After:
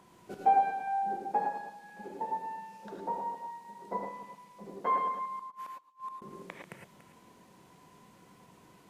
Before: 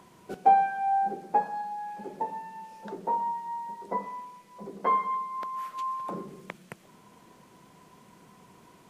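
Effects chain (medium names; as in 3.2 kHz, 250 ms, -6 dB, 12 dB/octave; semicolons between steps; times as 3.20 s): chunks repeated in reverse 146 ms, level -10.5 dB; 5.39–6.22 s: inverted gate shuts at -29 dBFS, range -31 dB; gated-style reverb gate 130 ms rising, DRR 1.5 dB; trim -5.5 dB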